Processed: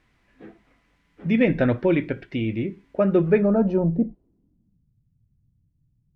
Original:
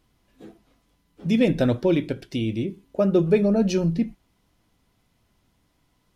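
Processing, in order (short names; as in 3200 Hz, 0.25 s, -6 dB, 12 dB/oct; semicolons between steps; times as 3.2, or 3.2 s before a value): added noise violet -52 dBFS; low-pass sweep 2000 Hz -> 130 Hz, 3.28–4.91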